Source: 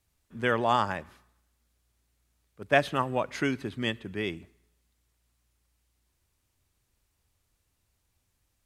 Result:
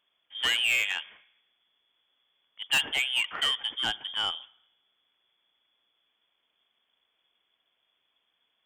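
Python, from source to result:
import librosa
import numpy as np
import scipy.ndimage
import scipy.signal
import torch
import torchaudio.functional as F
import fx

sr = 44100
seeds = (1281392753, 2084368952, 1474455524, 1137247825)

y = fx.low_shelf(x, sr, hz=110.0, db=-9.5)
y = fx.freq_invert(y, sr, carrier_hz=3400)
y = scipy.signal.sosfilt(scipy.signal.butter(2, 47.0, 'highpass', fs=sr, output='sos'), y)
y = fx.peak_eq(y, sr, hz=86.0, db=-11.5, octaves=2.2)
y = 10.0 ** (-24.5 / 20.0) * np.tanh(y / 10.0 ** (-24.5 / 20.0))
y = y * 10.0 ** (4.5 / 20.0)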